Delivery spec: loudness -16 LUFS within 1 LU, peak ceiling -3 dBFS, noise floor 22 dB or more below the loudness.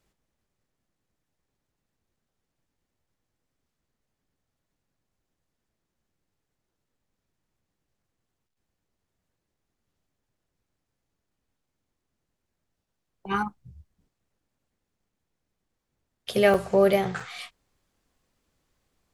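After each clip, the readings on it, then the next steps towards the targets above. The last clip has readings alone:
dropouts 2; longest dropout 4.6 ms; loudness -24.5 LUFS; peak -7.5 dBFS; loudness target -16.0 LUFS
-> interpolate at 16.54/17.2, 4.6 ms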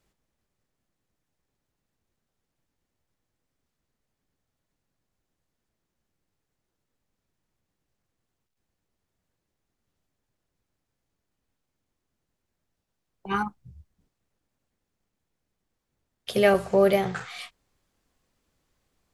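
dropouts 0; loudness -24.5 LUFS; peak -7.5 dBFS; loudness target -16.0 LUFS
-> gain +8.5 dB; limiter -3 dBFS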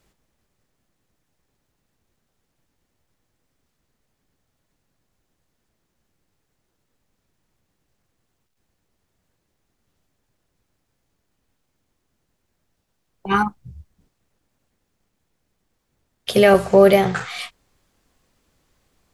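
loudness -16.5 LUFS; peak -3.0 dBFS; noise floor -74 dBFS

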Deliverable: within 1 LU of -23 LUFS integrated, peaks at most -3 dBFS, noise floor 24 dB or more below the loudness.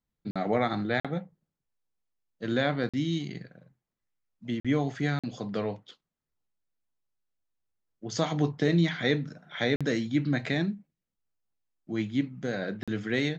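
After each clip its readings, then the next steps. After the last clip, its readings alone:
dropouts 7; longest dropout 46 ms; loudness -30.0 LUFS; peak -12.0 dBFS; loudness target -23.0 LUFS
-> interpolate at 0.31/1/2.89/4.6/5.19/9.76/12.83, 46 ms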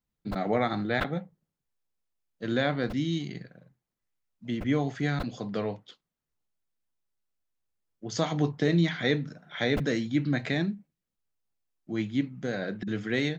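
dropouts 0; loudness -29.5 LUFS; peak -12.0 dBFS; loudness target -23.0 LUFS
-> gain +6.5 dB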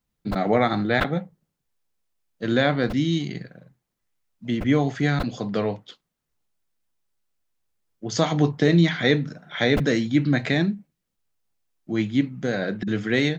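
loudness -23.0 LUFS; peak -5.5 dBFS; noise floor -80 dBFS

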